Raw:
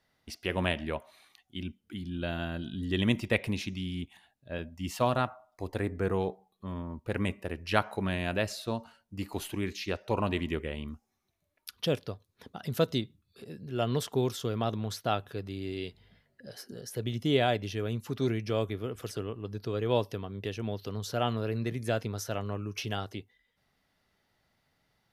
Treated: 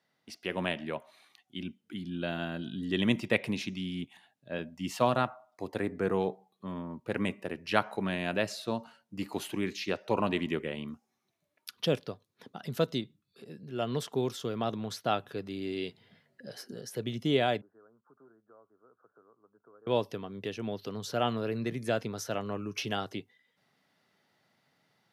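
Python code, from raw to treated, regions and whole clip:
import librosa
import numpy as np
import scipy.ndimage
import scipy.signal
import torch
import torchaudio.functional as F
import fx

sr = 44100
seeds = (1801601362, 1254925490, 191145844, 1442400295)

y = fx.chain(x, sr, fx.steep_lowpass(hz=1500.0, slope=96),
    fx.differentiator(),
    fx.band_squash(depth_pct=70), at=(17.61, 19.87))
y = fx.high_shelf(y, sr, hz=11000.0, db=-7.5)
y = fx.rider(y, sr, range_db=3, speed_s=2.0)
y = scipy.signal.sosfilt(scipy.signal.butter(4, 130.0, 'highpass', fs=sr, output='sos'), y)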